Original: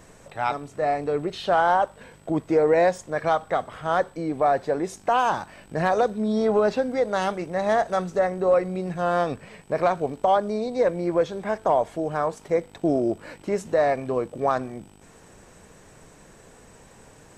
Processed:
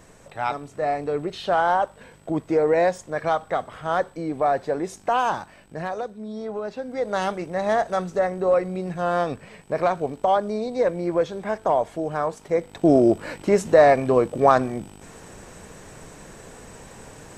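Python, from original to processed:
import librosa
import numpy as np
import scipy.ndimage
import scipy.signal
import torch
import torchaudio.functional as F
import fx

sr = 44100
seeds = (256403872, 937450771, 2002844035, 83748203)

y = fx.gain(x, sr, db=fx.line((5.29, -0.5), (6.1, -10.0), (6.72, -10.0), (7.13, 0.0), (12.52, 0.0), (12.96, 7.0)))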